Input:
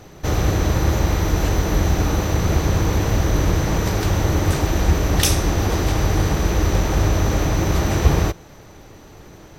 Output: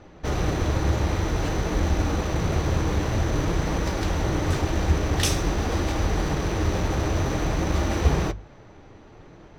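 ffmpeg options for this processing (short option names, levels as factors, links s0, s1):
-af "adynamicsmooth=sensitivity=7:basefreq=3400,flanger=delay=3.4:depth=6.7:regen=-56:speed=0.51:shape=sinusoidal,bandreject=f=50:t=h:w=6,bandreject=f=100:t=h:w=6,bandreject=f=150:t=h:w=6,bandreject=f=200:t=h:w=6"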